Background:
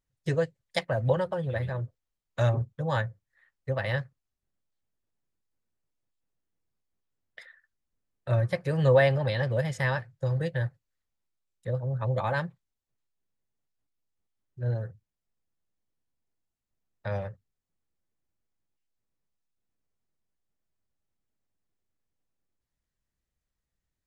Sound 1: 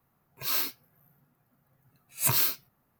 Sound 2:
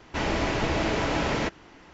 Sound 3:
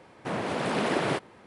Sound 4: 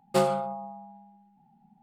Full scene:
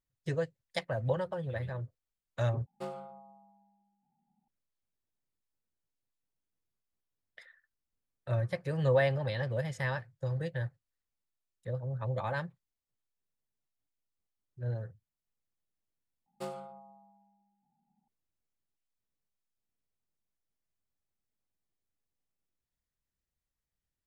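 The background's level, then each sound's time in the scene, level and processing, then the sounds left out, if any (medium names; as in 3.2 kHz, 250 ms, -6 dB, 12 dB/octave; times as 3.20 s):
background -6 dB
2.66 s: replace with 4 -17 dB + treble shelf 4.5 kHz -9 dB
16.26 s: replace with 4 -17 dB
not used: 1, 2, 3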